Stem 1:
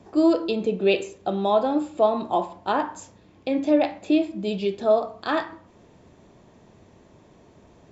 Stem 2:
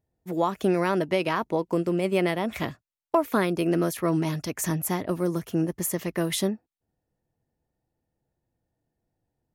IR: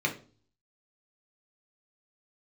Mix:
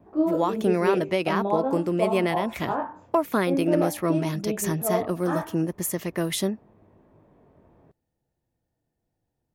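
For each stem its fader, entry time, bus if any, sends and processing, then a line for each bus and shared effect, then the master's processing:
-1.0 dB, 0.00 s, no send, LPF 1500 Hz 12 dB/oct; chorus 0.43 Hz, delay 18.5 ms, depth 7.3 ms
0.0 dB, 0.00 s, no send, dry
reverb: off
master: dry

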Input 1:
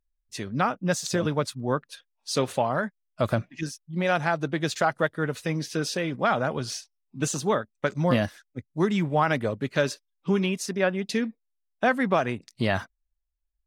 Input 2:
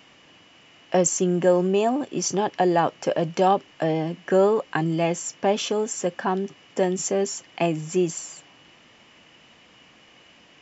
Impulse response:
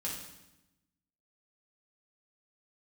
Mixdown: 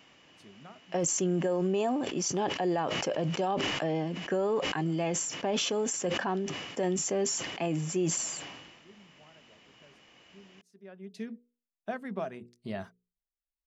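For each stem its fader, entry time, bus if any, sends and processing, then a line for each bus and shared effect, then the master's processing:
-17.5 dB, 0.05 s, no send, notches 60/120/180/240/300/360/420/480 Hz; small resonant body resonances 200/390/640 Hz, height 10 dB; auto duck -23 dB, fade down 1.35 s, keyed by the second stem
-6.0 dB, 0.00 s, no send, sustainer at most 42 dB/s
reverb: off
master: limiter -20.5 dBFS, peak gain reduction 7.5 dB

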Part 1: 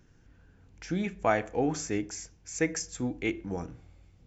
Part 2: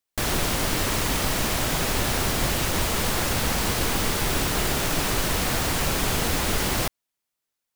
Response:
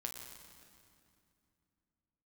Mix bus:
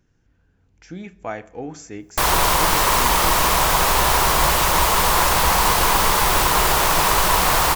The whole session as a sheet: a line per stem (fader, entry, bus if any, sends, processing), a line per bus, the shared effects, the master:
-4.5 dB, 0.00 s, send -18.5 dB, dry
+2.5 dB, 2.00 s, send -4 dB, fifteen-band EQ 100 Hz -9 dB, 250 Hz -11 dB, 1000 Hz +11 dB, 16000 Hz +4 dB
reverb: on, RT60 2.5 s, pre-delay 8 ms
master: dry

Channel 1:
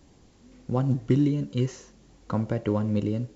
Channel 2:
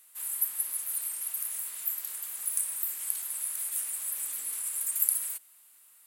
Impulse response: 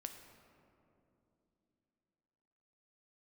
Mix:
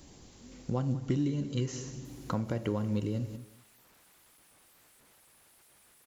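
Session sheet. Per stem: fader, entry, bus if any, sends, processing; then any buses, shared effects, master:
-1.0 dB, 0.00 s, send -5.5 dB, echo send -14 dB, high shelf 3700 Hz +9 dB
-17.0 dB, 1.90 s, no send, no echo send, compressor 6:1, threshold -42 dBFS, peak gain reduction 21 dB; Schmitt trigger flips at -49 dBFS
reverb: on, RT60 3.0 s, pre-delay 6 ms
echo: feedback echo 0.187 s, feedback 16%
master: compressor 2:1, threshold -34 dBFS, peak gain reduction 10 dB

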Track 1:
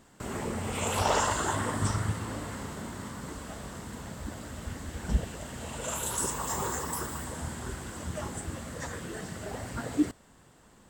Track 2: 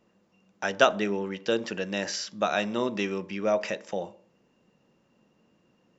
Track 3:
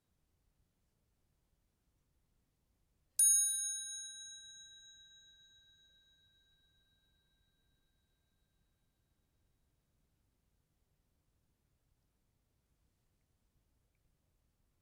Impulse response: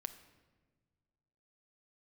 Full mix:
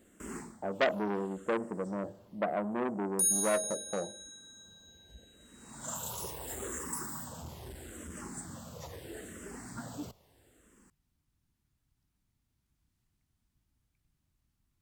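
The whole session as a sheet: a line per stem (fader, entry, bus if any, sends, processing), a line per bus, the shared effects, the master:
-5.5 dB, 0.00 s, no send, high shelf 8300 Hz +10 dB; endless phaser -0.76 Hz; auto duck -21 dB, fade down 0.25 s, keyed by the second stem
-3.0 dB, 0.00 s, no send, Chebyshev low-pass 710 Hz, order 3
+1.0 dB, 0.00 s, no send, bell 500 Hz -14 dB 1 oct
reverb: off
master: bell 290 Hz +3.5 dB 1.7 oct; core saturation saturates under 1700 Hz

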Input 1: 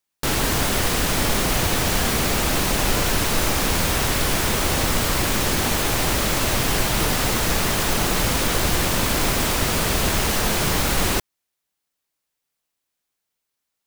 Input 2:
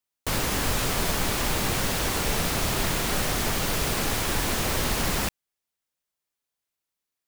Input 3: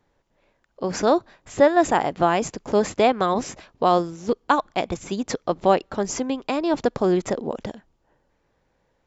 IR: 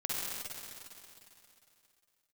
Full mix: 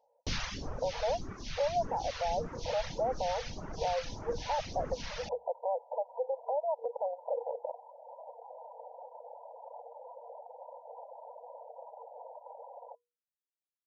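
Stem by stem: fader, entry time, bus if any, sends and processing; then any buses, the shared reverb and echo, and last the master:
-15.0 dB, 1.75 s, bus A, no send, dry
0.0 dB, 0.00 s, no bus, no send, steep low-pass 6300 Hz 96 dB/oct; phaser stages 2, 1.7 Hz, lowest notch 310–3800 Hz; auto duck -11 dB, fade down 0.80 s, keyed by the third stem
+0.5 dB, 0.00 s, bus A, no send, compressor 2.5:1, threshold -23 dBFS, peak gain reduction 9 dB; bell 290 Hz +7.5 dB 1.4 oct
bus A: 0.0 dB, FFT band-pass 460–1000 Hz; limiter -23.5 dBFS, peak gain reduction 12 dB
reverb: off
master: notches 60/120/180/240/300/360/420/480 Hz; reverb removal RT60 1.2 s

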